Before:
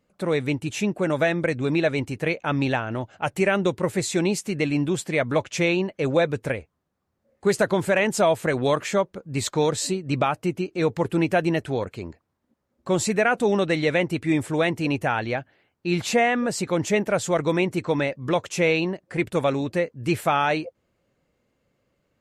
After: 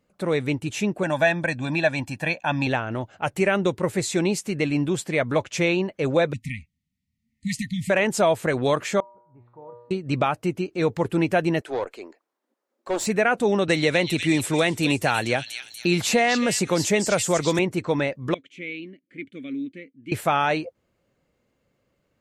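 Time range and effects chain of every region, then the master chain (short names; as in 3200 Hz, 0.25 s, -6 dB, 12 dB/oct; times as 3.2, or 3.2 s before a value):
1.03–2.67 HPF 230 Hz 6 dB/oct + comb 1.2 ms, depth 88%
6.33–7.9 brick-wall FIR band-stop 270–1800 Hz + high shelf 9400 Hz -5 dB
9–9.91 ladder low-pass 1100 Hz, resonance 55% + resonator 120 Hz, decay 0.83 s, mix 90%
11.61–13.07 HPF 320 Hz 24 dB/oct + dynamic EQ 770 Hz, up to +5 dB, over -34 dBFS, Q 0.82 + tube stage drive 19 dB, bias 0.4
13.68–17.59 high shelf 4700 Hz +9.5 dB + delay with a stepping band-pass 0.242 s, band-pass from 3900 Hz, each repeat 0.7 oct, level -2.5 dB + three-band squash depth 70%
18.34–20.12 vowel filter i + bell 5200 Hz -6.5 dB 0.25 oct
whole clip: dry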